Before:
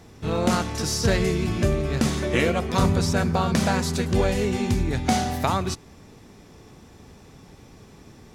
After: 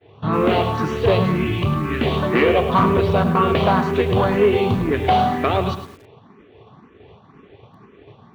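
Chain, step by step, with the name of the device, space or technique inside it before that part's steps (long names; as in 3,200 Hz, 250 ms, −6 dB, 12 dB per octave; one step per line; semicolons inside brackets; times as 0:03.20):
downward expander −41 dBFS
notch filter 5,100 Hz, Q 5.6
0:01.23–0:02.03: flat-topped bell 530 Hz −13 dB 1.1 octaves
barber-pole phaser into a guitar amplifier (frequency shifter mixed with the dry sound +2 Hz; soft clipping −20.5 dBFS, distortion −14 dB; loudspeaker in its box 97–3,400 Hz, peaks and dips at 110 Hz +3 dB, 410 Hz +7 dB, 670 Hz +4 dB, 1,100 Hz +8 dB, 3,000 Hz +5 dB)
feedback echo at a low word length 107 ms, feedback 35%, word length 8 bits, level −10 dB
level +8.5 dB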